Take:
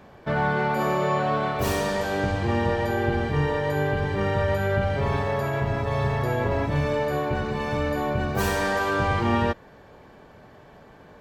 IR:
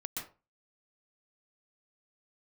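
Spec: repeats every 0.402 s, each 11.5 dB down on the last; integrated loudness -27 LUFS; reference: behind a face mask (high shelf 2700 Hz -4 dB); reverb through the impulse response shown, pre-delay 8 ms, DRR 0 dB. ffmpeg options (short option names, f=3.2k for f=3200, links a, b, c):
-filter_complex "[0:a]aecho=1:1:402|804|1206:0.266|0.0718|0.0194,asplit=2[a][b];[1:a]atrim=start_sample=2205,adelay=8[c];[b][c]afir=irnorm=-1:irlink=0,volume=-0.5dB[d];[a][d]amix=inputs=2:normalize=0,highshelf=f=2.7k:g=-4,volume=-4.5dB"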